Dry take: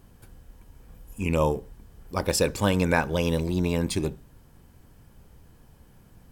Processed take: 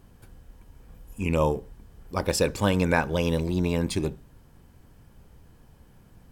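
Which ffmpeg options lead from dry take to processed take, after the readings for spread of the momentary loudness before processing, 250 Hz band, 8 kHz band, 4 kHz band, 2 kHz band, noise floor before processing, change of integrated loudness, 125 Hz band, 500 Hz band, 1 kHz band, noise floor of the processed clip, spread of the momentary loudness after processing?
9 LU, 0.0 dB, -2.5 dB, -1.0 dB, -0.5 dB, -55 dBFS, 0.0 dB, 0.0 dB, 0.0 dB, 0.0 dB, -55 dBFS, 9 LU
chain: -af "highshelf=f=6700:g=-4"

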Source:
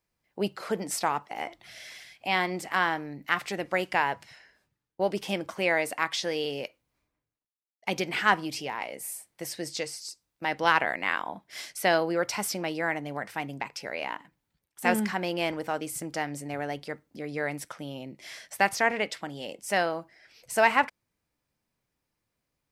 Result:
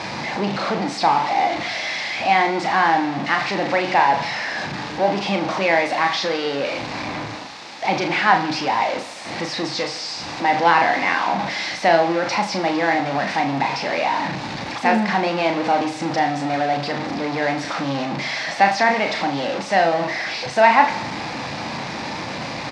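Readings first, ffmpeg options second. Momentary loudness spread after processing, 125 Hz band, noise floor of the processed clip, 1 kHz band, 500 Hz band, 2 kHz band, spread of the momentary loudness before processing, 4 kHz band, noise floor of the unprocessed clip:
11 LU, +10.5 dB, -31 dBFS, +12.5 dB, +9.0 dB, +8.0 dB, 14 LU, +10.0 dB, -83 dBFS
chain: -filter_complex "[0:a]aeval=exprs='val(0)+0.5*0.0708*sgn(val(0))':c=same,highpass=170,equalizer=f=420:t=q:w=4:g=-7,equalizer=f=810:t=q:w=4:g=6,equalizer=f=1400:t=q:w=4:g=-4,equalizer=f=3100:t=q:w=4:g=-6,lowpass=f=4700:w=0.5412,lowpass=f=4700:w=1.3066,asplit=2[s0][s1];[s1]adelay=36,volume=0.501[s2];[s0][s2]amix=inputs=2:normalize=0,asplit=2[s3][s4];[s4]aecho=0:1:80|160|240|320|400|480:0.178|0.107|0.064|0.0384|0.023|0.0138[s5];[s3][s5]amix=inputs=2:normalize=0,volume=1.58"

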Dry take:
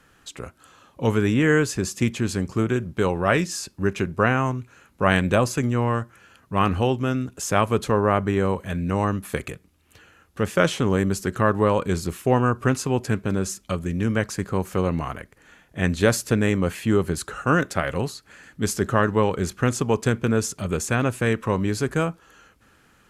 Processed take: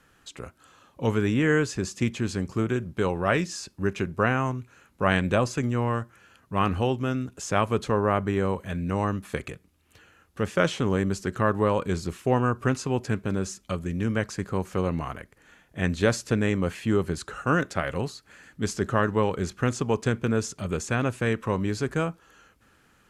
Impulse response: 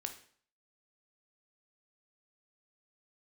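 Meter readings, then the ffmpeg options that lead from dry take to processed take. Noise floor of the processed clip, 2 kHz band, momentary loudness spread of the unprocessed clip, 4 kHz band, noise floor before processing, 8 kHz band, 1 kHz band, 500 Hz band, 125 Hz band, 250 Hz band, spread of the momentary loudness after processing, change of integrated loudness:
-62 dBFS, -3.5 dB, 8 LU, -3.5 dB, -59 dBFS, -6.5 dB, -3.5 dB, -3.5 dB, -3.5 dB, -3.5 dB, 9 LU, -3.5 dB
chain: -filter_complex "[0:a]acrossover=split=8400[s0][s1];[s1]acompressor=threshold=0.00178:ratio=4:attack=1:release=60[s2];[s0][s2]amix=inputs=2:normalize=0,volume=0.668"

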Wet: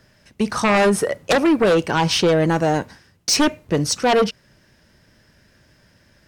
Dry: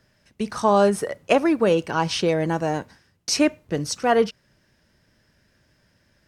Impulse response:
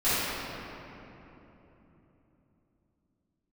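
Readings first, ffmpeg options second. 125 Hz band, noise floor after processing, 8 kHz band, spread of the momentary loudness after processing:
+5.5 dB, -57 dBFS, +6.0 dB, 8 LU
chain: -af "aeval=exprs='0.708*sin(PI/2*3.98*val(0)/0.708)':c=same,volume=0.376"

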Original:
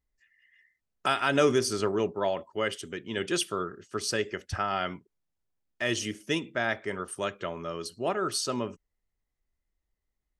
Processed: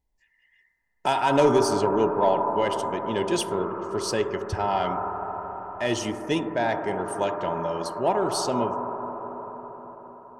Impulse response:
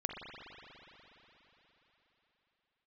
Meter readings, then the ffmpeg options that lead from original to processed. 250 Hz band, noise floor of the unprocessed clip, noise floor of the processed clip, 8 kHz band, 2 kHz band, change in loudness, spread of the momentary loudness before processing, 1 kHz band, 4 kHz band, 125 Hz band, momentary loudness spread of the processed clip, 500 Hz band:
+5.5 dB, -83 dBFS, -70 dBFS, 0.0 dB, -1.5 dB, +4.5 dB, 10 LU, +9.0 dB, 0.0 dB, +4.5 dB, 14 LU, +6.0 dB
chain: -filter_complex "[0:a]aeval=exprs='0.299*(cos(1*acos(clip(val(0)/0.299,-1,1)))-cos(1*PI/2))+0.0188*(cos(2*acos(clip(val(0)/0.299,-1,1)))-cos(2*PI/2))+0.0422*(cos(3*acos(clip(val(0)/0.299,-1,1)))-cos(3*PI/2))+0.0376*(cos(5*acos(clip(val(0)/0.299,-1,1)))-cos(5*PI/2))':c=same,asplit=2[s0][s1];[s1]lowpass=f=950:t=q:w=8.4[s2];[1:a]atrim=start_sample=2205,asetrate=33957,aresample=44100,lowpass=3100[s3];[s2][s3]afir=irnorm=-1:irlink=0,volume=0.596[s4];[s0][s4]amix=inputs=2:normalize=0,volume=0.891"

